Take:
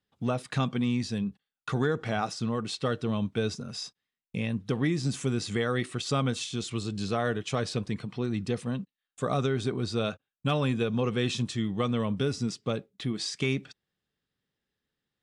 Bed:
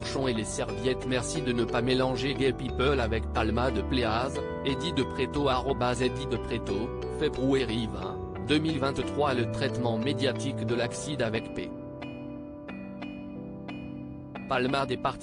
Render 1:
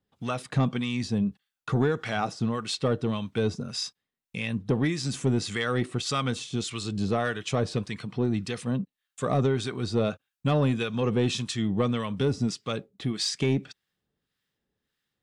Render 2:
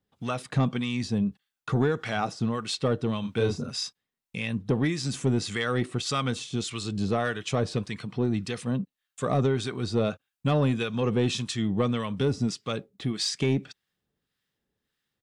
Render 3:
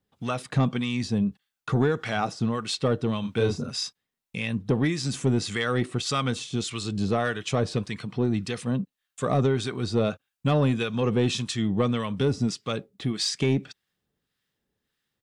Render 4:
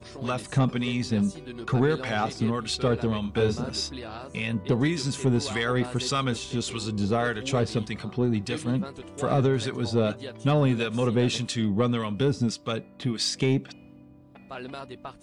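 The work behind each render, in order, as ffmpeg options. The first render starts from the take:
-filter_complex "[0:a]acrossover=split=990[a][b];[a]aeval=exprs='val(0)*(1-0.7/2+0.7/2*cos(2*PI*1.7*n/s))':c=same[c];[b]aeval=exprs='val(0)*(1-0.7/2-0.7/2*cos(2*PI*1.7*n/s))':c=same[d];[c][d]amix=inputs=2:normalize=0,asplit=2[e][f];[f]aeval=exprs='0.15*sin(PI/2*1.78*val(0)/0.15)':c=same,volume=-9dB[g];[e][g]amix=inputs=2:normalize=0"
-filter_complex "[0:a]asplit=3[a][b][c];[a]afade=t=out:st=3.23:d=0.02[d];[b]asplit=2[e][f];[f]adelay=34,volume=-3dB[g];[e][g]amix=inputs=2:normalize=0,afade=t=in:st=3.23:d=0.02,afade=t=out:st=3.7:d=0.02[h];[c]afade=t=in:st=3.7:d=0.02[i];[d][h][i]amix=inputs=3:normalize=0"
-af "volume=1.5dB"
-filter_complex "[1:a]volume=-11dB[a];[0:a][a]amix=inputs=2:normalize=0"

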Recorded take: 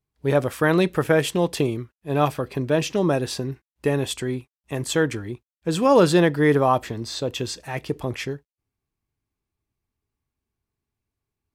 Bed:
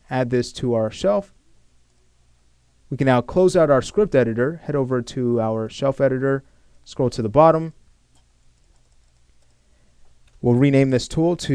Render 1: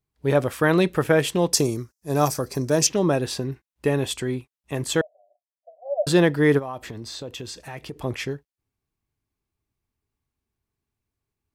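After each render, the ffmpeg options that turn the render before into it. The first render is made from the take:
-filter_complex "[0:a]asettb=1/sr,asplit=3[a][b][c];[a]atrim=end=1.534[d];[b]atrim=start=1.53:end=2.87,asetpts=PTS-STARTPTS,afade=t=in:d=0.004:c=qsin,afade=t=out:st=1.336:d=0.004:c=qsin,highshelf=f=4.2k:t=q:w=3:g=10.5[e];[c]atrim=start=2.866[f];[d][e]acrossfade=d=0.004:c1=hsin:c2=qsin[g];[g][f]acrossfade=d=0.004:c1=qsin:c2=hsin,asettb=1/sr,asplit=3[h][i][j];[h]atrim=end=5.014[k];[i]atrim=start=5.01:end=6.07,asetpts=PTS-STARTPTS,afade=t=in:d=0.004:c=qsin,afade=t=out:st=1.056:d=0.004:c=qsin,asuperpass=centerf=650:order=8:qfactor=4.3[l];[j]atrim=start=6.066[m];[k][l]acrossfade=d=0.004:c1=hsin:c2=qsin[n];[n][m]acrossfade=d=0.004:c1=qsin:c2=hsin,asplit=3[o][p][q];[o]afade=t=out:st=6.58:d=0.02[r];[p]acompressor=threshold=-33dB:ratio=3:attack=3.2:release=140:knee=1:detection=peak,afade=t=in:st=6.58:d=0.02,afade=t=out:st=8.03:d=0.02[s];[q]afade=t=in:st=8.03:d=0.02[t];[r][s][t]amix=inputs=3:normalize=0"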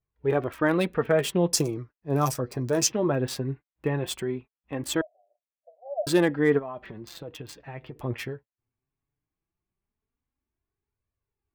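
-filter_complex "[0:a]acrossover=split=3000[a][b];[b]acrusher=bits=4:mix=0:aa=0.5[c];[a][c]amix=inputs=2:normalize=0,flanger=delay=1.6:depth=7.5:regen=33:speed=0.18:shape=triangular"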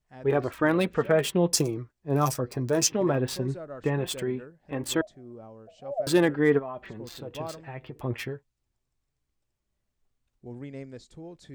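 -filter_complex "[1:a]volume=-24.5dB[a];[0:a][a]amix=inputs=2:normalize=0"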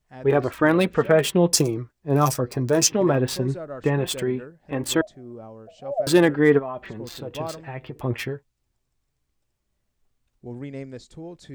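-af "volume=5dB"

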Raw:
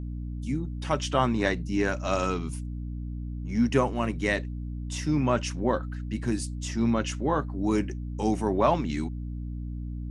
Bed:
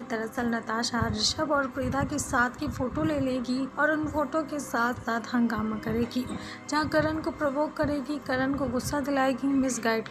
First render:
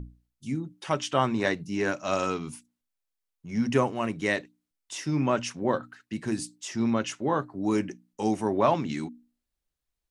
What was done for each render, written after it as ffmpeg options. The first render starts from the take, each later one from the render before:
-af "bandreject=f=60:t=h:w=6,bandreject=f=120:t=h:w=6,bandreject=f=180:t=h:w=6,bandreject=f=240:t=h:w=6,bandreject=f=300:t=h:w=6"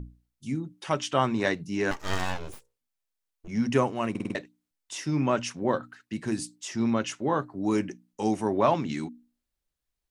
-filter_complex "[0:a]asettb=1/sr,asplit=3[a][b][c];[a]atrim=end=1.914[d];[b]atrim=start=1.91:end=3.48,asetpts=PTS-STARTPTS,afade=t=in:d=0.004:c=qsin,afade=t=out:st=1.566:d=0.004:c=qsin,aeval=exprs='abs(val(0))':c=same[e];[c]atrim=start=3.476[f];[d][e]acrossfade=d=0.004:c1=hsin:c2=qsin[g];[g][f]acrossfade=d=0.004:c1=qsin:c2=hsin,asplit=6[h][i][j][k][l][m];[h]atrim=end=4.152[n];[i]atrim=start=4.098:end=4.152[o];[j]atrim=start=4.098:end=4.152[p];[k]atrim=start=4.098:end=4.152[q];[l]atrim=start=4.098:end=4.152[r];[m]atrim=start=4.348[s];[n][o]acrossfade=d=0.004:c1=hsin:c2=hsin[t];[t][p]acrossfade=d=0.004:c1=hsin:c2=hsin[u];[u][q]acrossfade=d=0.004:c1=hsin:c2=hsin[v];[v][r]acrossfade=d=0.004:c1=hsin:c2=hsin[w];[w][s]acrossfade=d=0.004:c1=hsin:c2=hsin"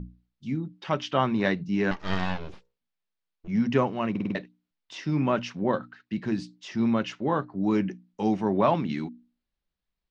-af "lowpass=f=4.6k:w=0.5412,lowpass=f=4.6k:w=1.3066,equalizer=f=190:t=o:w=0.25:g=10"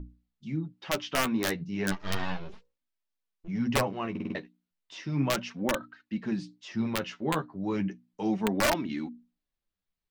-af "aeval=exprs='(mod(4.47*val(0)+1,2)-1)/4.47':c=same,flanger=delay=3.1:depth=9.6:regen=17:speed=0.34:shape=sinusoidal"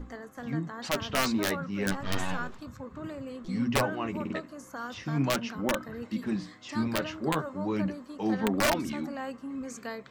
-filter_complex "[1:a]volume=-12dB[a];[0:a][a]amix=inputs=2:normalize=0"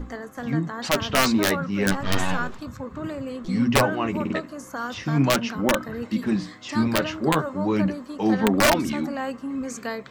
-af "volume=7.5dB"

